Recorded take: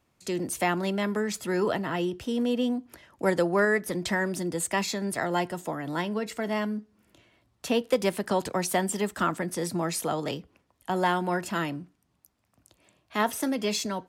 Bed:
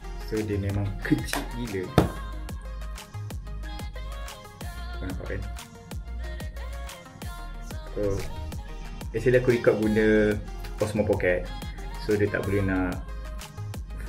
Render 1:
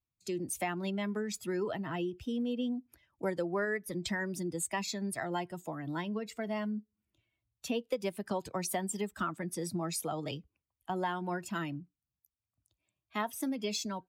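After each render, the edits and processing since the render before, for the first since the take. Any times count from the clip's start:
spectral dynamics exaggerated over time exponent 1.5
downward compressor 2.5 to 1, threshold −33 dBFS, peak gain reduction 9.5 dB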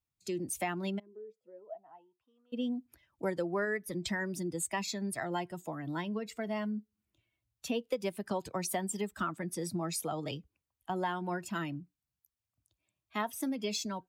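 0:00.98–0:02.52: resonant band-pass 320 Hz → 1,400 Hz, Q 18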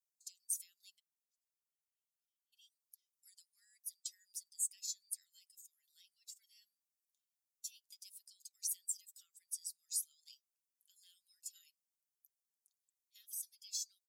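inverse Chebyshev high-pass filter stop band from 930 Hz, stop band 80 dB
comb filter 5.9 ms, depth 33%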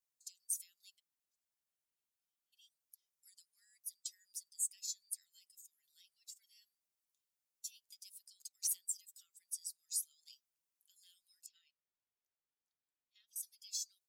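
0:08.39–0:08.88: leveller curve on the samples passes 1
0:11.46–0:13.36: high-frequency loss of the air 210 metres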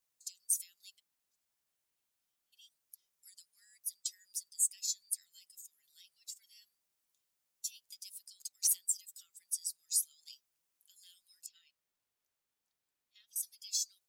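level +6.5 dB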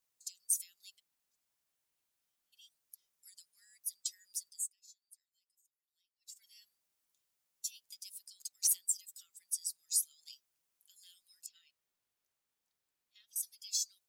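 0:04.48–0:06.43: duck −23.5 dB, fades 0.24 s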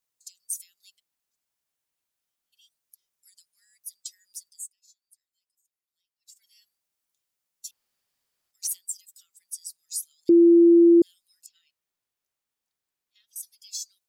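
0:07.71–0:08.51: fill with room tone
0:10.29–0:11.02: beep over 340 Hz −11 dBFS

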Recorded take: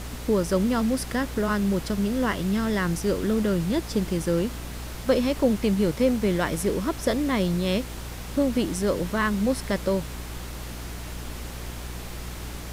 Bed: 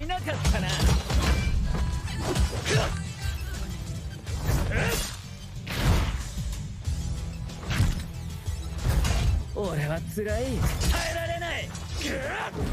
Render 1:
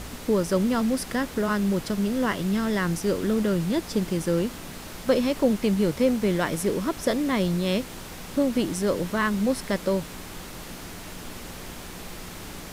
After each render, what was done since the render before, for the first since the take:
hum removal 60 Hz, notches 2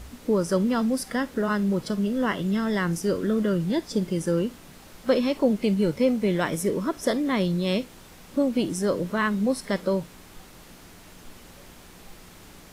noise reduction from a noise print 9 dB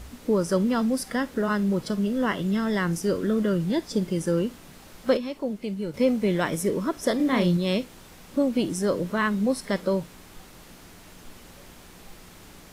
0:05.17–0:05.94: clip gain −8 dB
0:07.16–0:07.57: double-tracking delay 34 ms −3.5 dB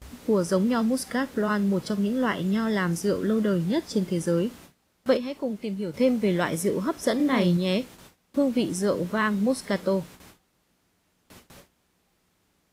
high-pass filter 50 Hz 12 dB per octave
noise gate with hold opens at −36 dBFS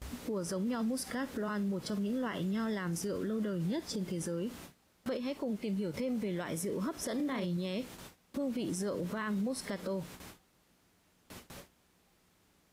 downward compressor, threshold −27 dBFS, peak gain reduction 10.5 dB
brickwall limiter −28 dBFS, peak gain reduction 10.5 dB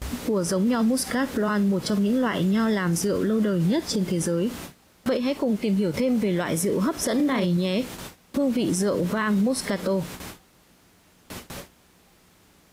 level +12 dB

